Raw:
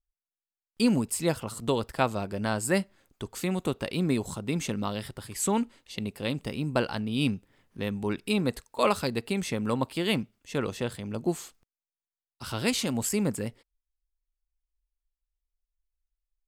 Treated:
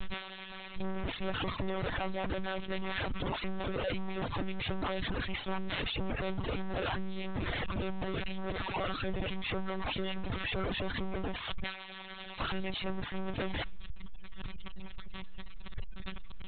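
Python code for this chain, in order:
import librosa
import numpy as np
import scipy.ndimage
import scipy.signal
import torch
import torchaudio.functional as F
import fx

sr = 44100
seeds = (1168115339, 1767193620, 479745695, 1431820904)

y = np.sign(x) * np.sqrt(np.mean(np.square(x)))
y = fx.lpc_monotone(y, sr, seeds[0], pitch_hz=190.0, order=10)
y = fx.dereverb_blind(y, sr, rt60_s=1.2)
y = fx.sustainer(y, sr, db_per_s=110.0)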